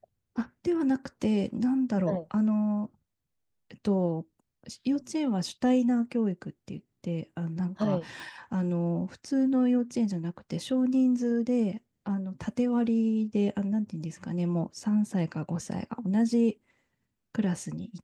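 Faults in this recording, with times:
8.2 pop

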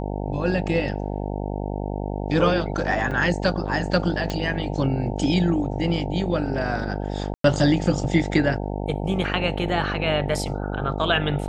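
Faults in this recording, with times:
buzz 50 Hz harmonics 18 -28 dBFS
3.11 gap 4.5 ms
4.3 pop -13 dBFS
7.34–7.44 gap 0.103 s

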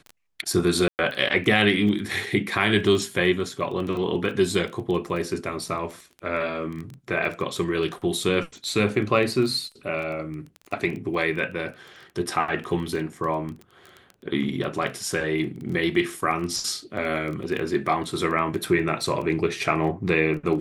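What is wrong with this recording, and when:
crackle 12/s -30 dBFS
0.88–0.99 gap 0.109 s

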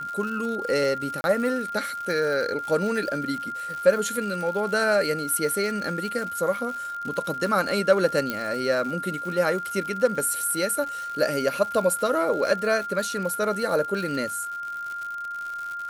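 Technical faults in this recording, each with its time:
crackle 160/s -32 dBFS
tone 1400 Hz -30 dBFS
1.21–1.24 gap 31 ms
8.3 pop -12 dBFS

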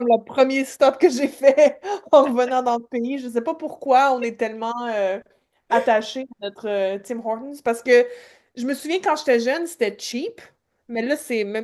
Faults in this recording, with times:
7.66 gap 2.8 ms

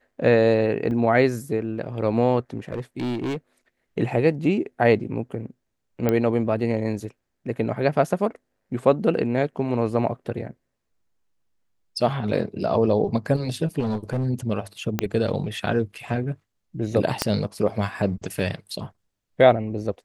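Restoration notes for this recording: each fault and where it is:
0.91 gap 2.3 ms
2.59–3.37 clipped -23.5 dBFS
6.09 pop -9 dBFS
13.79–14.27 clipped -21 dBFS
14.99 pop -8 dBFS
17.22 pop -5 dBFS

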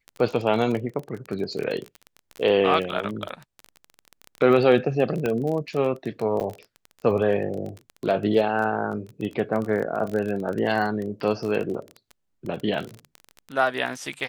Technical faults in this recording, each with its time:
crackle 21/s -28 dBFS
5.26 pop -13 dBFS
6.4–6.41 gap 5.3 ms

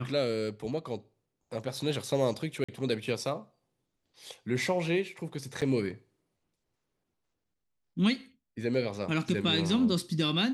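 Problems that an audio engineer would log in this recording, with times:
2.64–2.69 gap 45 ms
5.61–5.62 gap 7.1 ms

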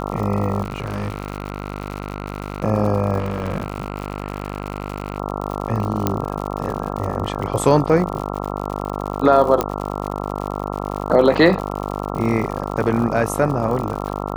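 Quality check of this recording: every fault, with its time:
buzz 50 Hz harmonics 27 -26 dBFS
crackle 87/s -26 dBFS
0.62–2.64 clipped -19.5 dBFS
3.18–5.18 clipped -18 dBFS
6.07 pop -4 dBFS
9.61 pop -5 dBFS

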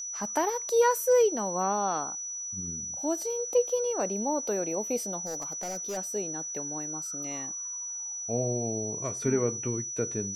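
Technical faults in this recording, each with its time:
tone 5900 Hz -34 dBFS
5.25–5.98 clipped -30.5 dBFS

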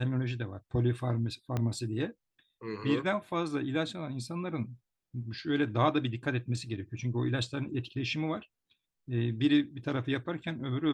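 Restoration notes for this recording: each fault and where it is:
1.57 pop -19 dBFS

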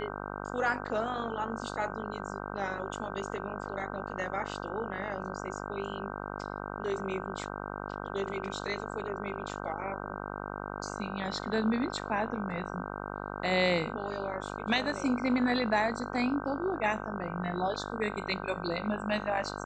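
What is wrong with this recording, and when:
buzz 50 Hz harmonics 31 -39 dBFS

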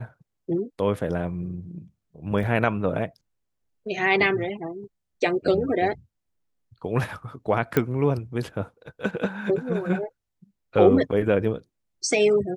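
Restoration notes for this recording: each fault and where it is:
2.43 gap 2.3 ms
7.77 pop -8 dBFS

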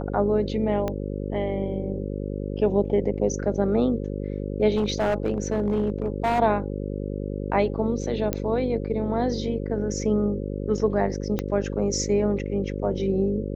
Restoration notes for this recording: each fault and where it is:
buzz 50 Hz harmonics 11 -30 dBFS
0.88 pop -15 dBFS
4.75–6.4 clipped -18 dBFS
8.33 pop -10 dBFS
11.39 pop -12 dBFS

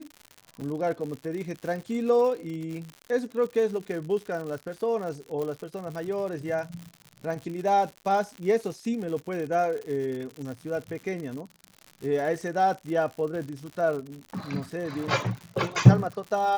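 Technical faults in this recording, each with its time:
crackle 120/s -34 dBFS
0.61 gap 4.5 ms
5.42 pop

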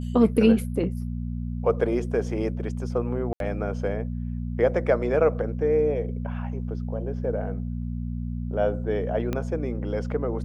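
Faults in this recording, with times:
hum 60 Hz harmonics 4 -30 dBFS
3.33–3.4 gap 72 ms
9.33 pop -15 dBFS

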